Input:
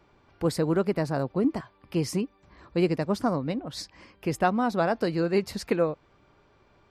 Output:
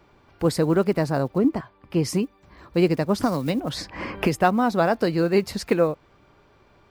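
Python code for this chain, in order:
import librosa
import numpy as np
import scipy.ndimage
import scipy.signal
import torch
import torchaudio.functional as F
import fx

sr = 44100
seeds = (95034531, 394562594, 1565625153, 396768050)

y = fx.block_float(x, sr, bits=7)
y = fx.high_shelf(y, sr, hz=3800.0, db=-9.0, at=(1.38, 2.05))
y = fx.band_squash(y, sr, depth_pct=100, at=(3.18, 4.42))
y = y * 10.0 ** (4.5 / 20.0)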